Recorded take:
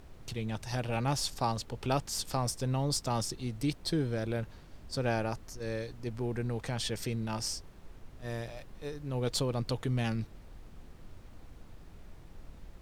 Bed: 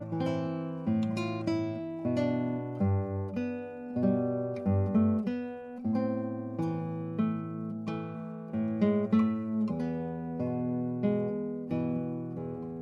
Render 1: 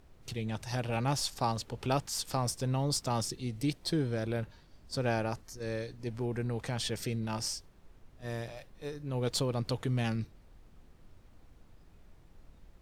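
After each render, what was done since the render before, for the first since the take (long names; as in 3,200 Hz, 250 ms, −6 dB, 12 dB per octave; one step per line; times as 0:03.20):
noise reduction from a noise print 7 dB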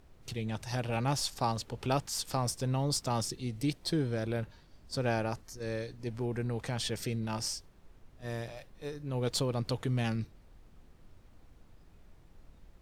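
no processing that can be heard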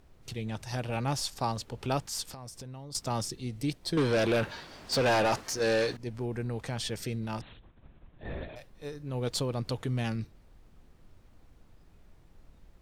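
0:02.24–0:02.95: downward compressor 16 to 1, threshold −40 dBFS
0:03.97–0:05.97: mid-hump overdrive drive 27 dB, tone 4,100 Hz, clips at −17.5 dBFS
0:07.41–0:08.56: linear-prediction vocoder at 8 kHz whisper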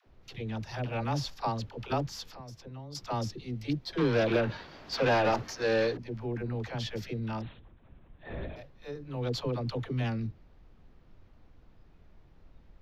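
moving average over 5 samples
all-pass dispersion lows, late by 70 ms, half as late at 450 Hz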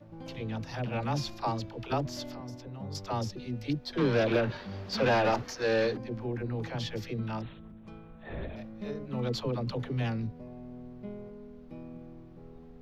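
mix in bed −13.5 dB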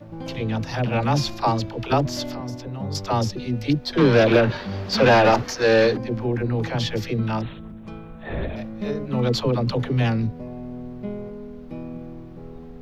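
level +10.5 dB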